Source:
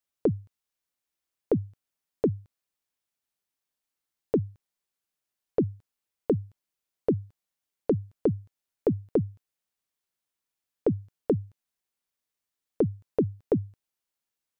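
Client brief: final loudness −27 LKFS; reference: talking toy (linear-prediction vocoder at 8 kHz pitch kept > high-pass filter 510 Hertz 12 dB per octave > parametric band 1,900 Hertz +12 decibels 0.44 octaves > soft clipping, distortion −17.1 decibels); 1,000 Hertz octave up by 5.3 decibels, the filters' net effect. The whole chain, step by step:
parametric band 1,000 Hz +7.5 dB
linear-prediction vocoder at 8 kHz pitch kept
high-pass filter 510 Hz 12 dB per octave
parametric band 1,900 Hz +12 dB 0.44 octaves
soft clipping −14.5 dBFS
level +9 dB

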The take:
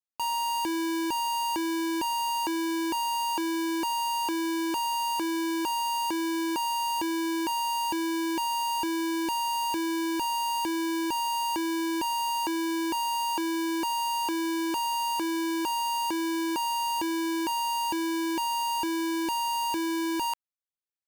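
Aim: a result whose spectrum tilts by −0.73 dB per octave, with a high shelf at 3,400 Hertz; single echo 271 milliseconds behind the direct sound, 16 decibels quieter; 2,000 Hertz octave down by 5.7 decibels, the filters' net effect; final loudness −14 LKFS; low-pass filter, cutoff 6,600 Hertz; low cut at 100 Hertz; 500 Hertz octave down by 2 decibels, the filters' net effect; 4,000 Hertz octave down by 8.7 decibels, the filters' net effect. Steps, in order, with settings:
high-pass filter 100 Hz
low-pass filter 6,600 Hz
parametric band 500 Hz −4.5 dB
parametric band 2,000 Hz −3 dB
high-shelf EQ 3,400 Hz −5 dB
parametric band 4,000 Hz −8 dB
single-tap delay 271 ms −16 dB
level +17 dB

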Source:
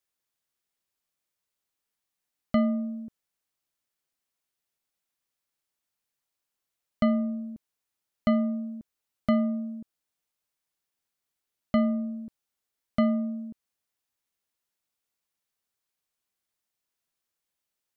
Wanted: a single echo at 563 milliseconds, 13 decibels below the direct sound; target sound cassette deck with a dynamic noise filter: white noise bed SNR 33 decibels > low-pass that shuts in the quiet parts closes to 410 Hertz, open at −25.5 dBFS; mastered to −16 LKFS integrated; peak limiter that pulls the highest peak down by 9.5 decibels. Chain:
brickwall limiter −21 dBFS
single-tap delay 563 ms −13 dB
white noise bed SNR 33 dB
low-pass that shuts in the quiet parts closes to 410 Hz, open at −25.5 dBFS
level +17 dB

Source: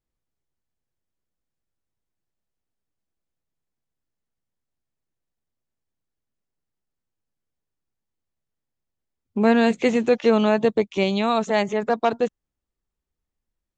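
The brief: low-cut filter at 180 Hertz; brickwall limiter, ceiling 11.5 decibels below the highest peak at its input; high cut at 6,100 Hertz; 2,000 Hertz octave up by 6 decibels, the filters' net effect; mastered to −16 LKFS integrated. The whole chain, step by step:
high-pass filter 180 Hz
low-pass filter 6,100 Hz
parametric band 2,000 Hz +7.5 dB
level +10.5 dB
brickwall limiter −4.5 dBFS

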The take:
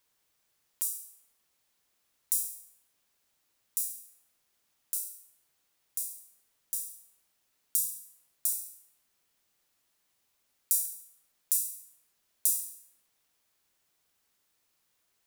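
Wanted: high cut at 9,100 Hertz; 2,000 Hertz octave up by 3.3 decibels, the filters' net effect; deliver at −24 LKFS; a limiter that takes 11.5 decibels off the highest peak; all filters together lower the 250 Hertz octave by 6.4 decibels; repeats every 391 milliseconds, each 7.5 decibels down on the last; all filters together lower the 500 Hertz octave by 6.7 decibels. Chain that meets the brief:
low-pass filter 9,100 Hz
parametric band 250 Hz −6.5 dB
parametric band 500 Hz −7.5 dB
parametric band 2,000 Hz +5 dB
brickwall limiter −23 dBFS
repeating echo 391 ms, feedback 42%, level −7.5 dB
level +17.5 dB

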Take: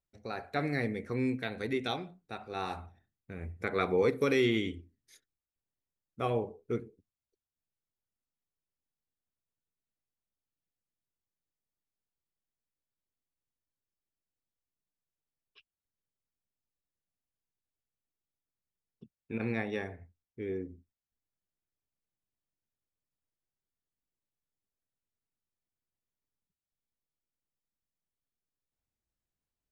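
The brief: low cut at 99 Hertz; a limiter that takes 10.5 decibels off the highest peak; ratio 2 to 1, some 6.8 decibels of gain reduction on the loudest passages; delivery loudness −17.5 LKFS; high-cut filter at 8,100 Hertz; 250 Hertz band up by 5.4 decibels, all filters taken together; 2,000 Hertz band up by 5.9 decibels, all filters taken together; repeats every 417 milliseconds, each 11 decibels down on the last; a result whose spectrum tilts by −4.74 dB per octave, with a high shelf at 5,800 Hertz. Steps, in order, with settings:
high-pass filter 99 Hz
low-pass filter 8,100 Hz
parametric band 250 Hz +6.5 dB
parametric band 2,000 Hz +6 dB
high-shelf EQ 5,800 Hz +6.5 dB
downward compressor 2 to 1, threshold −32 dBFS
brickwall limiter −27.5 dBFS
repeating echo 417 ms, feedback 28%, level −11 dB
level +22 dB

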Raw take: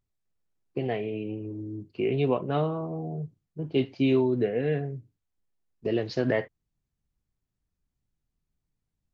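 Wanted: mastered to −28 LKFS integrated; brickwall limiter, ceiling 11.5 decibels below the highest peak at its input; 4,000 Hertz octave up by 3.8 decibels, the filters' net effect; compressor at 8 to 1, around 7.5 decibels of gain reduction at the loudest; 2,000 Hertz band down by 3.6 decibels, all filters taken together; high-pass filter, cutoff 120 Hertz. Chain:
high-pass filter 120 Hz
parametric band 2,000 Hz −7 dB
parametric band 4,000 Hz +8.5 dB
downward compressor 8 to 1, threshold −27 dBFS
level +11 dB
brickwall limiter −19 dBFS

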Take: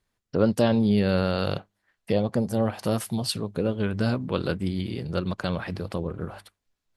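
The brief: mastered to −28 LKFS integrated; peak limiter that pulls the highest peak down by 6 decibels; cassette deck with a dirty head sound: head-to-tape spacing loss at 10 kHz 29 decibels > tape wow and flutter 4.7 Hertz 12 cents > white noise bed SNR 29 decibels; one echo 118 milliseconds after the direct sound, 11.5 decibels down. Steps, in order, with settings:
brickwall limiter −14.5 dBFS
head-to-tape spacing loss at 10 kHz 29 dB
single-tap delay 118 ms −11.5 dB
tape wow and flutter 4.7 Hz 12 cents
white noise bed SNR 29 dB
level +1 dB

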